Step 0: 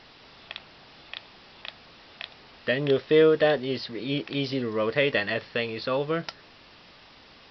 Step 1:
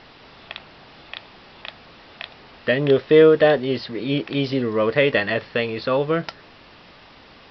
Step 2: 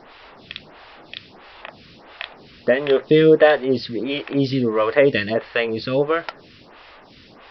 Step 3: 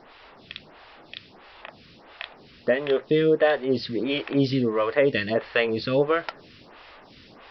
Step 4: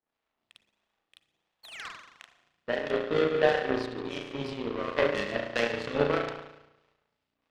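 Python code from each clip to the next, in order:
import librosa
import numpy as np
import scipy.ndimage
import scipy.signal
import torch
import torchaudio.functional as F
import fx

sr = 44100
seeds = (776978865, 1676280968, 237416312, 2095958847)

y1 = fx.high_shelf(x, sr, hz=4500.0, db=-10.5)
y1 = F.gain(torch.from_numpy(y1), 6.5).numpy()
y2 = fx.stagger_phaser(y1, sr, hz=1.5)
y2 = F.gain(torch.from_numpy(y2), 4.5).numpy()
y3 = fx.rider(y2, sr, range_db=3, speed_s=0.5)
y3 = F.gain(torch.from_numpy(y3), -4.5).numpy()
y4 = fx.spec_paint(y3, sr, seeds[0], shape='fall', start_s=1.63, length_s=0.26, low_hz=950.0, high_hz=4600.0, level_db=-27.0)
y4 = fx.rev_spring(y4, sr, rt60_s=1.8, pass_ms=(34,), chirp_ms=45, drr_db=-3.0)
y4 = fx.power_curve(y4, sr, exponent=2.0)
y4 = F.gain(torch.from_numpy(y4), -2.5).numpy()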